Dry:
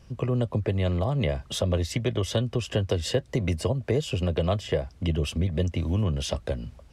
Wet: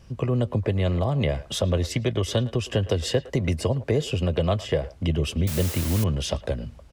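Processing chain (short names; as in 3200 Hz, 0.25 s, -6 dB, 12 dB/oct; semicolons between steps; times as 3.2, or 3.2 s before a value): 5.47–6.04 requantised 6-bit, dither triangular; speakerphone echo 0.11 s, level -17 dB; gain +2 dB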